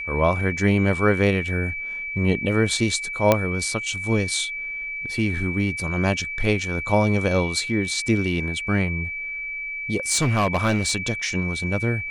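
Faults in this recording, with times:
whistle 2,300 Hz −28 dBFS
0:03.32: click −3 dBFS
0:10.10–0:10.92: clipping −15.5 dBFS

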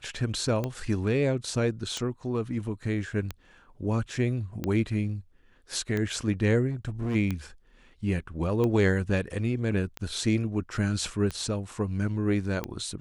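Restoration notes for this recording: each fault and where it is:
scratch tick 45 rpm −17 dBFS
0:06.70–0:07.16: clipping −26 dBFS

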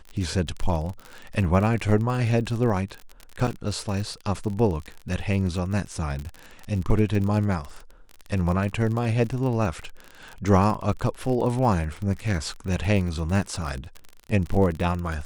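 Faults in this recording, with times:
surface crackle 39 per second −29 dBFS
0:03.47–0:03.48: drop-out 6.5 ms

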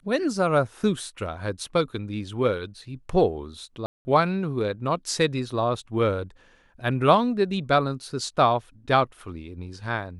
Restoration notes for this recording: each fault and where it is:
0:03.86–0:04.05: drop-out 190 ms

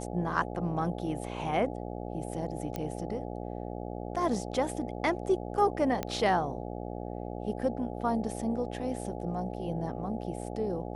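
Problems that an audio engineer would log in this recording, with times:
mains buzz 60 Hz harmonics 14 −38 dBFS
0:02.76: click −20 dBFS
0:06.03: click −17 dBFS

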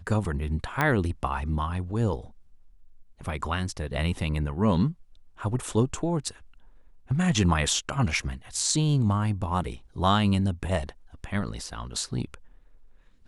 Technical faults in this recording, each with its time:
0:00.81: click −11 dBFS

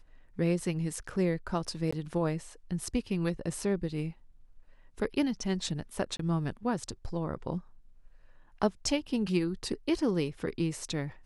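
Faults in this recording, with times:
0:01.91–0:01.93: drop-out 15 ms
0:06.17–0:06.19: drop-out 23 ms

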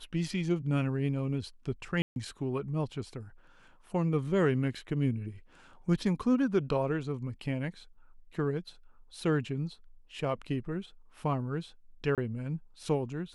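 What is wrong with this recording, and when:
0:02.02–0:02.16: drop-out 141 ms
0:12.15–0:12.18: drop-out 27 ms

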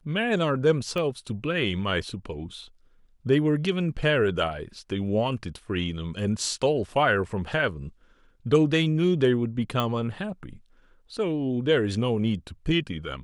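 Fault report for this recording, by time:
0:00.98: click −19 dBFS
0:09.80: click −14 dBFS

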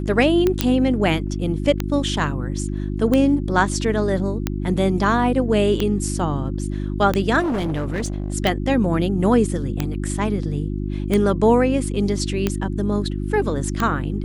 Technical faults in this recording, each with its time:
mains hum 50 Hz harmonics 7 −25 dBFS
scratch tick 45 rpm −7 dBFS
0:00.61: click −2 dBFS
0:07.39–0:08.34: clipping −19.5 dBFS

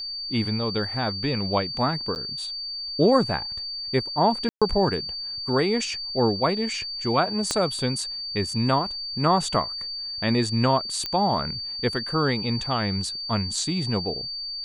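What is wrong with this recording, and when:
whistle 4,600 Hz −30 dBFS
0:02.15–0:02.16: drop-out 9.3 ms
0:04.49–0:04.62: drop-out 126 ms
0:07.51: click −10 dBFS
0:11.06: click −14 dBFS

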